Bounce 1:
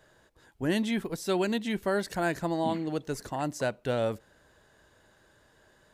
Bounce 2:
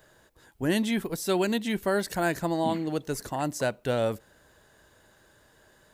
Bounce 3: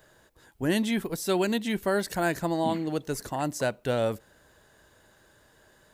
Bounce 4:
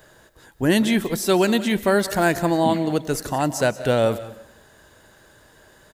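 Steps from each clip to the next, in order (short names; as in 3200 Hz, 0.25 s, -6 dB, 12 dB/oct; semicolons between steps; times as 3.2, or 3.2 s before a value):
high shelf 11000 Hz +11.5 dB; gain +2 dB
nothing audible
echo 0.183 s -16.5 dB; on a send at -17 dB: reverb RT60 0.75 s, pre-delay 0.1 s; on the sum: gain +7.5 dB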